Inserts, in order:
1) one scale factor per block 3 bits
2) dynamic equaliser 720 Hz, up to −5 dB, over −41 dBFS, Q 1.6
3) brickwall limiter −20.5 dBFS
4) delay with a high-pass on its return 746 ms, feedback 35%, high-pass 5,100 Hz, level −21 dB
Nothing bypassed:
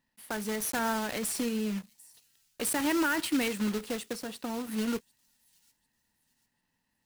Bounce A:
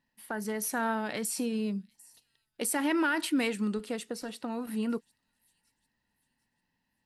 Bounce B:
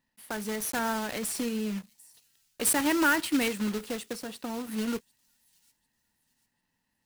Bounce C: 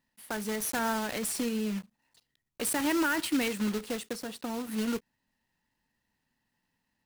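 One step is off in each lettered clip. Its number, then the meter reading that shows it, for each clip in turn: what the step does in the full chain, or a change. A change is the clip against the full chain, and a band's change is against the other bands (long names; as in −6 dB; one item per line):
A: 1, distortion level −12 dB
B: 3, change in crest factor +6.5 dB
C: 4, echo-to-direct ratio −38.0 dB to none audible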